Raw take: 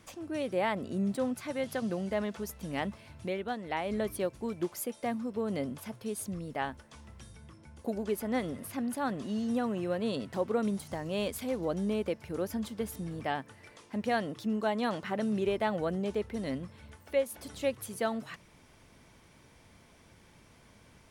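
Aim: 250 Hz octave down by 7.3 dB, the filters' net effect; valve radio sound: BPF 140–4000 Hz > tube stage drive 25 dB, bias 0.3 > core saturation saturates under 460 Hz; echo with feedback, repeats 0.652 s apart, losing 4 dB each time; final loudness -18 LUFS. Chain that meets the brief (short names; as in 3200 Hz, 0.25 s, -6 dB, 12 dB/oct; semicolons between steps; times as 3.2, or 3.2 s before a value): BPF 140–4000 Hz; bell 250 Hz -8.5 dB; feedback echo 0.652 s, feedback 63%, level -4 dB; tube stage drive 25 dB, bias 0.3; core saturation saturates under 460 Hz; gain +21 dB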